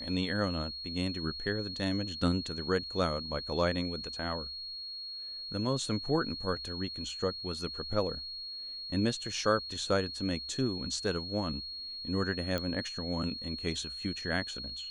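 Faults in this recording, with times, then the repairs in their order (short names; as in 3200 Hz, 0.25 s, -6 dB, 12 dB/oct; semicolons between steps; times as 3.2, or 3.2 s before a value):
tone 4300 Hz -39 dBFS
12.58 pop -19 dBFS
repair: de-click; notch 4300 Hz, Q 30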